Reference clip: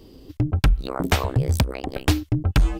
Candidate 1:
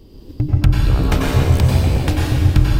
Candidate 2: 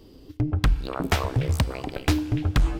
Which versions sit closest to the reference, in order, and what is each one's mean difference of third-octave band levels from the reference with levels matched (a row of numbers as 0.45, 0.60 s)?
2, 1; 3.5, 8.5 dB